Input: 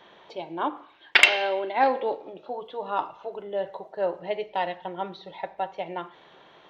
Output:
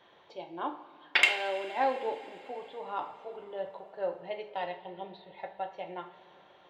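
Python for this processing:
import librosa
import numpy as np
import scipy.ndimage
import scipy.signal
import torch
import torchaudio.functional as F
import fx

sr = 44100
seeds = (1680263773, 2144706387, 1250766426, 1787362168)

y = fx.env_phaser(x, sr, low_hz=570.0, high_hz=1500.0, full_db=-29.5, at=(4.77, 5.36), fade=0.02)
y = fx.rev_double_slope(y, sr, seeds[0], early_s=0.36, late_s=4.5, knee_db=-18, drr_db=5.0)
y = F.gain(torch.from_numpy(y), -8.5).numpy()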